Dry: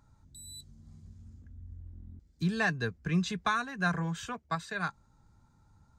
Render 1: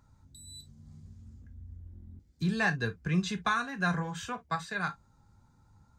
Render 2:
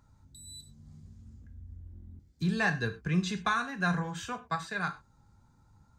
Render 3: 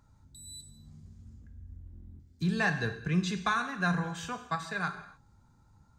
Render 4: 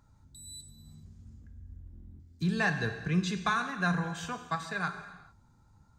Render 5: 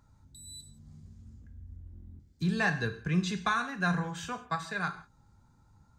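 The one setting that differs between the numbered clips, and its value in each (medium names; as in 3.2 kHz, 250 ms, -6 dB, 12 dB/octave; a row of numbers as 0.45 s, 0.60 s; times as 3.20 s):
gated-style reverb, gate: 80 ms, 140 ms, 310 ms, 460 ms, 200 ms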